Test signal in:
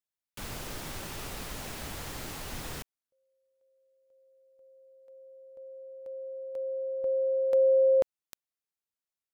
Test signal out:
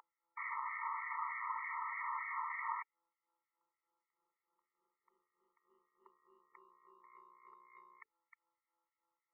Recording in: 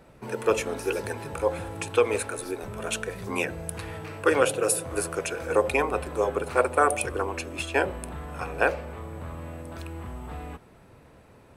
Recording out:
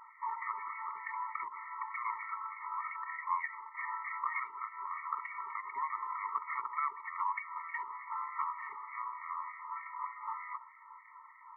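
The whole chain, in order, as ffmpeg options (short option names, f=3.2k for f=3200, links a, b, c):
-filter_complex "[0:a]aeval=exprs='val(0)+0.00251*(sin(2*PI*60*n/s)+sin(2*PI*2*60*n/s)/2+sin(2*PI*3*60*n/s)/3+sin(2*PI*4*60*n/s)/4+sin(2*PI*5*60*n/s)/5)':c=same,alimiter=limit=-20dB:level=0:latency=1:release=99,aeval=exprs='val(0)+0.00447*sin(2*PI*680*n/s)':c=same,acontrast=71,aeval=exprs='(tanh(7.94*val(0)+0.05)-tanh(0.05))/7.94':c=same,acrossover=split=1500[a][b];[a]aeval=exprs='val(0)*(1-1/2+1/2*cos(2*PI*3.3*n/s))':c=same[c];[b]aeval=exprs='val(0)*(1-1/2-1/2*cos(2*PI*3.3*n/s))':c=same[d];[c][d]amix=inputs=2:normalize=0,aemphasis=mode=reproduction:type=riaa,afftfilt=real='re*between(b*sr/4096,520,2600)':imag='im*between(b*sr/4096,520,2600)':win_size=4096:overlap=0.75,acompressor=threshold=-34dB:ratio=16:attack=15:release=261:knee=6:detection=peak,afftfilt=real='re*eq(mod(floor(b*sr/1024/450),2),0)':imag='im*eq(mod(floor(b*sr/1024/450),2),0)':win_size=1024:overlap=0.75,volume=9dB"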